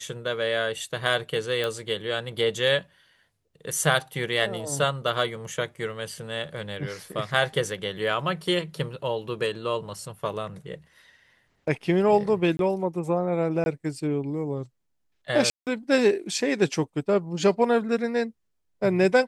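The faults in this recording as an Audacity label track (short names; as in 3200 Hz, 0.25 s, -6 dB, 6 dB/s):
1.640000	1.640000	pop
12.570000	12.590000	gap 22 ms
13.640000	13.660000	gap 21 ms
15.500000	15.670000	gap 0.168 s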